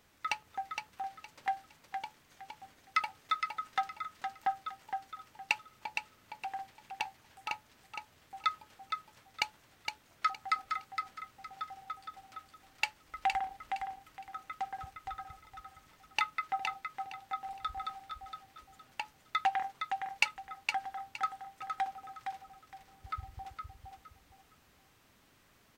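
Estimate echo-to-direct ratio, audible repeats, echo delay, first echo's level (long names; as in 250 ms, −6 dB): −5.0 dB, 3, 464 ms, −5.5 dB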